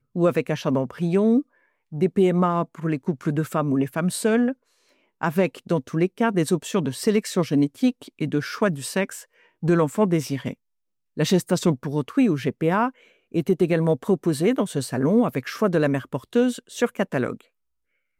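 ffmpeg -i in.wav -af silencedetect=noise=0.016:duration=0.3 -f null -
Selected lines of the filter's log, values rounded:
silence_start: 1.42
silence_end: 1.92 | silence_duration: 0.51
silence_start: 4.53
silence_end: 5.22 | silence_duration: 0.69
silence_start: 9.22
silence_end: 9.63 | silence_duration: 0.41
silence_start: 10.53
silence_end: 11.17 | silence_duration: 0.64
silence_start: 12.90
silence_end: 13.34 | silence_duration: 0.45
silence_start: 17.41
silence_end: 18.20 | silence_duration: 0.79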